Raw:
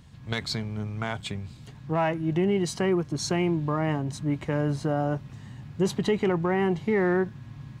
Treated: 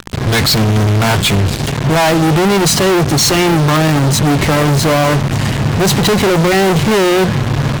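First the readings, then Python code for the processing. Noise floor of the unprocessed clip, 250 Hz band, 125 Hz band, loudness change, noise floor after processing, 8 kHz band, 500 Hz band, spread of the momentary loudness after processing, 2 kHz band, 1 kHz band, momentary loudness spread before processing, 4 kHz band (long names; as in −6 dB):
−46 dBFS, +14.0 dB, +17.5 dB, +15.5 dB, −18 dBFS, +23.0 dB, +13.5 dB, 4 LU, +17.5 dB, +17.0 dB, 12 LU, +22.0 dB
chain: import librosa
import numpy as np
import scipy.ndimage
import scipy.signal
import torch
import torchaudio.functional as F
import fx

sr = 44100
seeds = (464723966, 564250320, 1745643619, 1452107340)

y = fx.fuzz(x, sr, gain_db=50.0, gate_db=-46.0)
y = fx.hum_notches(y, sr, base_hz=60, count=3)
y = y * 10.0 ** (3.5 / 20.0)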